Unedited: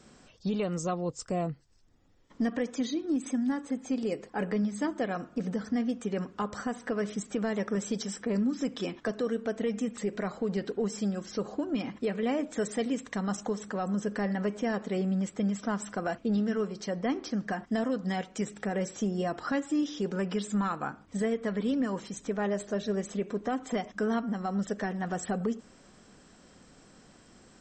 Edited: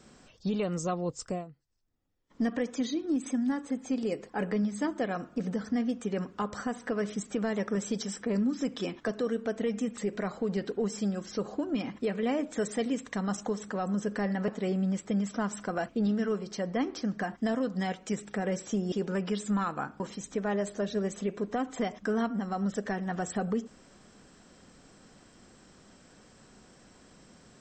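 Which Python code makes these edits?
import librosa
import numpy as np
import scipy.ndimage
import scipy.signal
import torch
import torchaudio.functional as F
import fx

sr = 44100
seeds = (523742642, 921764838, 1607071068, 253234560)

y = fx.edit(x, sr, fx.fade_down_up(start_s=1.29, length_s=1.13, db=-15.0, fade_s=0.16),
    fx.cut(start_s=14.48, length_s=0.29),
    fx.cut(start_s=19.21, length_s=0.75),
    fx.cut(start_s=21.04, length_s=0.89), tone=tone)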